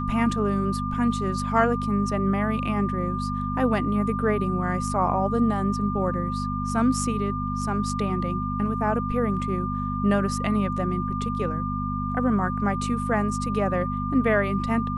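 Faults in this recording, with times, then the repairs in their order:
hum 50 Hz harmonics 5 -29 dBFS
whine 1.2 kHz -30 dBFS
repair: band-stop 1.2 kHz, Q 30; de-hum 50 Hz, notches 5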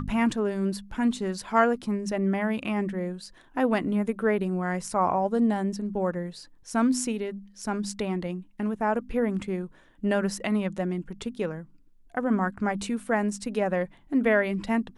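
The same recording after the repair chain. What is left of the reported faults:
nothing left

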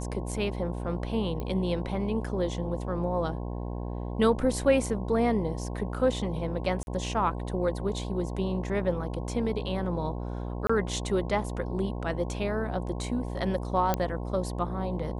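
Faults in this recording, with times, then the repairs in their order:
buzz 60 Hz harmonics 18 -34 dBFS
1.40 s: pop -22 dBFS
6.83–6.87 s: dropout 41 ms
10.67–10.70 s: dropout 25 ms
13.94 s: pop -11 dBFS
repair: de-click; de-hum 60 Hz, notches 18; interpolate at 6.83 s, 41 ms; interpolate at 10.67 s, 25 ms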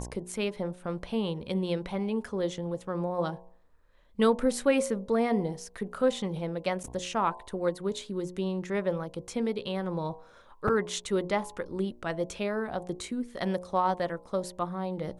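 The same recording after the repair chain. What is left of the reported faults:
nothing left

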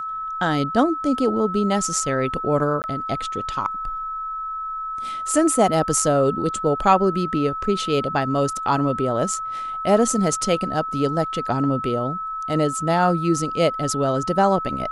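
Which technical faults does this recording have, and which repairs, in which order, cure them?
whine 1.3 kHz -26 dBFS
2.82–2.84 s: dropout 19 ms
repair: band-stop 1.3 kHz, Q 30; interpolate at 2.82 s, 19 ms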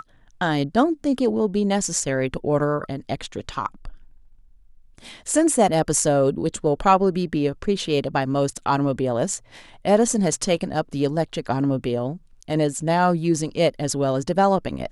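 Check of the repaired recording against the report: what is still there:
nothing left

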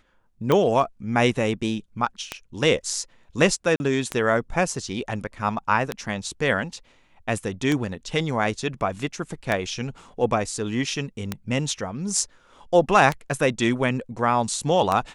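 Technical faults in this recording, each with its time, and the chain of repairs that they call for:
tick 33 1/3 rpm -9 dBFS
3.76–3.80 s: dropout 40 ms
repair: de-click; interpolate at 3.76 s, 40 ms

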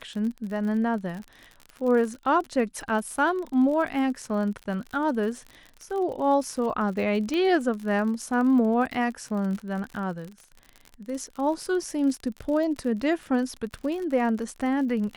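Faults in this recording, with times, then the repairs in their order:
crackle 48 per s -33 dBFS
7.34 s: pop -17 dBFS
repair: de-click

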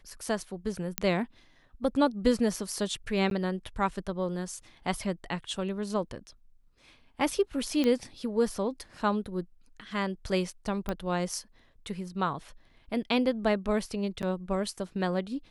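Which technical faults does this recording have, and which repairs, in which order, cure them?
0.98 s: pop -8 dBFS
3.30–3.31 s: dropout 12 ms
7.84 s: pop -16 dBFS
10.89 s: pop -18 dBFS
14.22–14.23 s: dropout 8.5 ms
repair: de-click; interpolate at 3.30 s, 12 ms; interpolate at 14.22 s, 8.5 ms

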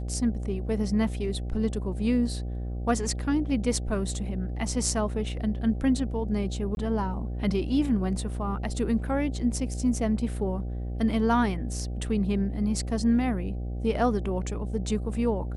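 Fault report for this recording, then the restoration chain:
buzz 60 Hz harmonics 13 -32 dBFS
6.75–6.77 s: dropout 21 ms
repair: de-hum 60 Hz, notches 13; interpolate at 6.75 s, 21 ms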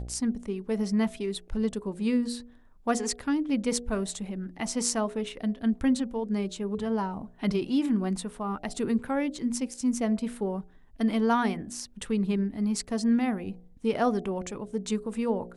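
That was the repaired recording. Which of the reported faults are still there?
nothing left

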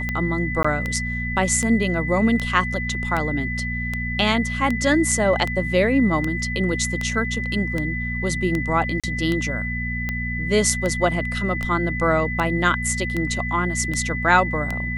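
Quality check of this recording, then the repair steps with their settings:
hum 60 Hz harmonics 4 -28 dBFS
tick 78 rpm -12 dBFS
whine 2 kHz -27 dBFS
0.63–0.65 s: dropout 15 ms
9.00–9.04 s: dropout 36 ms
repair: de-click; de-hum 60 Hz, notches 4; band-stop 2 kHz, Q 30; interpolate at 0.63 s, 15 ms; interpolate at 9.00 s, 36 ms

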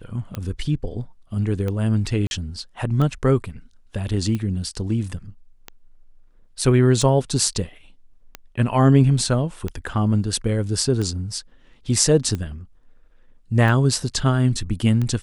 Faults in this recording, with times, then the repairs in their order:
tick 45 rpm -15 dBFS
2.27–2.31 s: dropout 41 ms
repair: de-click; interpolate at 2.27 s, 41 ms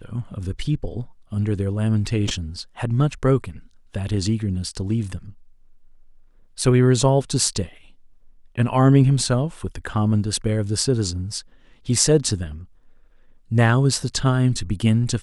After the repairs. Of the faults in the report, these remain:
nothing left

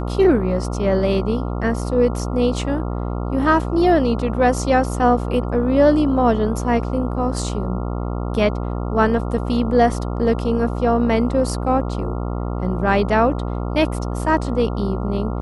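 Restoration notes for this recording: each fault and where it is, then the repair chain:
buzz 60 Hz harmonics 23 -24 dBFS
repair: de-hum 60 Hz, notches 23

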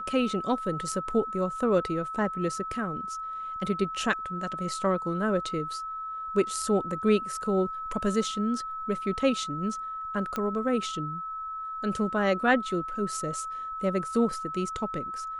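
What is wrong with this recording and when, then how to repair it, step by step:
whine 1.3 kHz -33 dBFS
10.36 s: pop -17 dBFS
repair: de-click; band-stop 1.3 kHz, Q 30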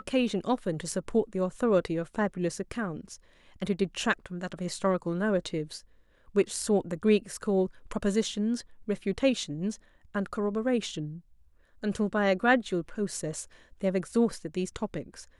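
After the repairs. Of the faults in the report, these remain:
nothing left

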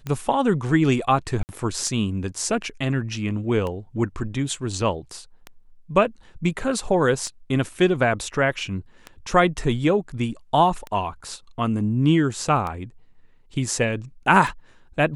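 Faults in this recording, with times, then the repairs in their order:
tick 33 1/3 rpm -17 dBFS
1.43–1.49 s: dropout 59 ms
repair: de-click; interpolate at 1.43 s, 59 ms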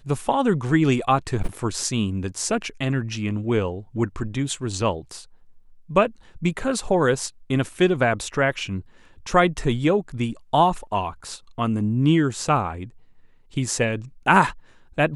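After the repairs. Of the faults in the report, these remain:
nothing left

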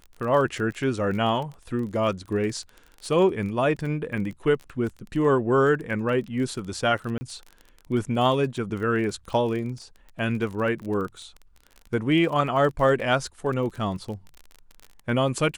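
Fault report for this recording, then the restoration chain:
crackle 23 per s -32 dBFS
7.18–7.21 s: dropout 30 ms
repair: de-click; interpolate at 7.18 s, 30 ms

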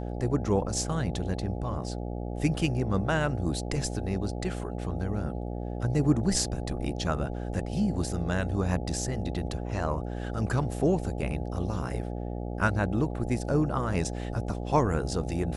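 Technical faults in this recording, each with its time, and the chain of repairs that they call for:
buzz 60 Hz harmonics 14 -34 dBFS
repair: de-hum 60 Hz, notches 14

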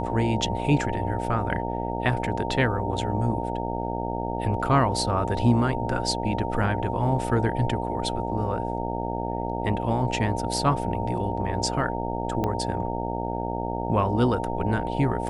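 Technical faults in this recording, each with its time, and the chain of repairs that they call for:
buzz 60 Hz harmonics 15 -30 dBFS
whine 920 Hz -32 dBFS
12.44 s: pop -14 dBFS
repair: de-click; band-stop 920 Hz, Q 30; de-hum 60 Hz, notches 15

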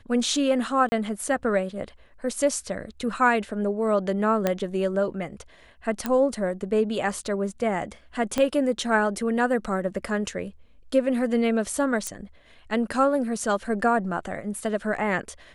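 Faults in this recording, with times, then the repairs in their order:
0.89–0.92 s: dropout 30 ms
4.47 s: pop -9 dBFS
6.06 s: pop -12 dBFS
8.38 s: pop -11 dBFS
12.07 s: pop -15 dBFS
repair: de-click; interpolate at 0.89 s, 30 ms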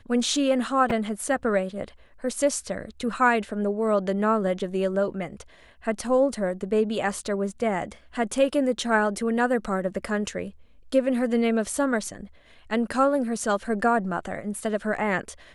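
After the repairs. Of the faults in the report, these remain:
8.38 s: pop

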